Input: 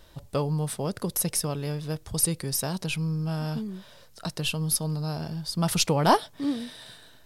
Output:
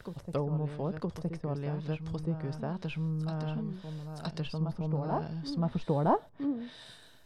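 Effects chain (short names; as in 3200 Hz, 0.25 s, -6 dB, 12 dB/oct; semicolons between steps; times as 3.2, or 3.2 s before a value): treble ducked by the level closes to 880 Hz, closed at -23.5 dBFS; reverse echo 0.966 s -7 dB; gain -4.5 dB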